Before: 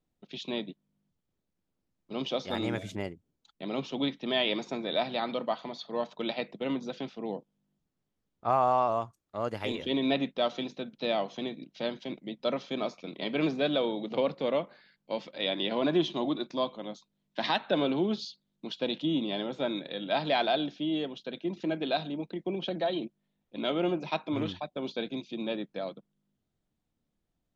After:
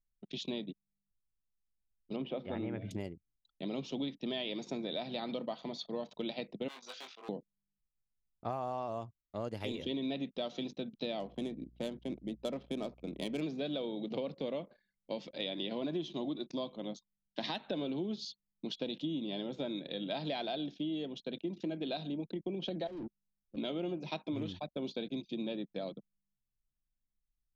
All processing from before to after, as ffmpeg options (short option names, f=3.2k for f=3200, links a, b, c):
-filter_complex "[0:a]asettb=1/sr,asplit=3[a][b][c];[a]atrim=end=2.164[d];[b]atrim=start=2.16:end=2.91,asetpts=PTS-STARTPTS,afade=t=in:d=0.004:c=qsin,afade=t=out:st=0.746:d=0.004:c=qsin,lowpass=f=2.5k:w=0.5412,lowpass=f=2.5k:w=1.3066,bandreject=f=60:t=h:w=6,bandreject=f=120:t=h:w=6,bandreject=f=180:t=h:w=6,bandreject=f=240:t=h:w=6,bandreject=f=300:t=h:w=6,bandreject=f=360:t=h:w=6[e];[c]atrim=start=2.906[f];[d][e]acrossfade=d=0.004:c1=hsin:c2=qsin[g];[g][f]acrossfade=d=0.004:c1=qsin:c2=hsin,asettb=1/sr,asplit=3[h][i][j];[h]atrim=end=6.684[k];[i]atrim=start=6.68:end=7.29,asetpts=PTS-STARTPTS,afade=t=in:d=0.004:c=qsin,afade=t=out:st=0.606:d=0.004:c=qsin,asoftclip=type=hard:threshold=-31.5dB,highpass=f=1.2k:t=q:w=1.7,asplit=2[l][m];[m]adelay=20,volume=-4dB[n];[l][n]amix=inputs=2:normalize=0,atrim=end_sample=26901[o];[j]atrim=start=7.286[p];[k][o]acrossfade=d=0.004:c1=hsin:c2=qsin[q];[q][p]acrossfade=d=0.004:c1=qsin:c2=hsin,asettb=1/sr,asplit=3[r][s][t];[r]atrim=end=11.204[u];[s]atrim=start=11.2:end=13.41,asetpts=PTS-STARTPTS,afade=t=in:d=0.004:c=qsin,afade=t=out:st=2.206:d=0.004:c=qsin,adynamicsmooth=sensitivity=5.5:basefreq=1.8k,aeval=exprs='val(0)+0.001*(sin(2*PI*60*n/s)+sin(2*PI*2*60*n/s)/2+sin(2*PI*3*60*n/s)/3+sin(2*PI*4*60*n/s)/4+sin(2*PI*5*60*n/s)/5)':c=same[v];[t]atrim=start=13.406[w];[u][v]acrossfade=d=0.004:c1=hsin:c2=qsin[x];[x][w]acrossfade=d=0.004:c1=qsin:c2=hsin,asettb=1/sr,asplit=3[y][z][aa];[y]atrim=end=22.874[ab];[z]atrim=start=22.87:end=23.57,asetpts=PTS-STARTPTS,afade=t=in:d=0.004:c=qsin,afade=t=out:st=0.696:d=0.004:c=qsin,asoftclip=type=hard:threshold=-38.5dB,adynamicsmooth=sensitivity=4.5:basefreq=660[ac];[aa]atrim=start=23.566[ad];[ab][ac]acrossfade=d=0.004:c1=hsin:c2=qsin[ae];[ae][ad]acrossfade=d=0.004:c1=qsin:c2=hsin,anlmdn=0.001,equalizer=f=1.3k:w=0.63:g=-10.5,acompressor=threshold=-37dB:ratio=5,volume=2.5dB"